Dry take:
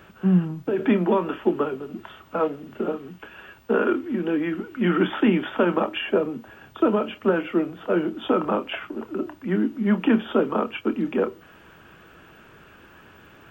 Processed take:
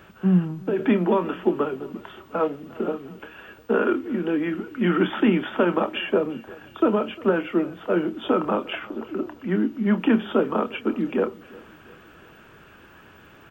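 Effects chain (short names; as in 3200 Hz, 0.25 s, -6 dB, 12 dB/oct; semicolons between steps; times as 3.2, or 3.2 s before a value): 8.79–9.98 bell 9400 Hz -11 dB 0.28 oct; feedback echo 0.352 s, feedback 50%, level -22 dB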